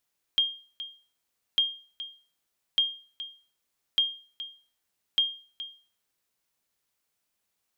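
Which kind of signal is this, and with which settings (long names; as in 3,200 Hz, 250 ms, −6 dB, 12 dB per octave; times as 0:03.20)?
ping with an echo 3,220 Hz, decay 0.39 s, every 1.20 s, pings 5, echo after 0.42 s, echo −14 dB −16 dBFS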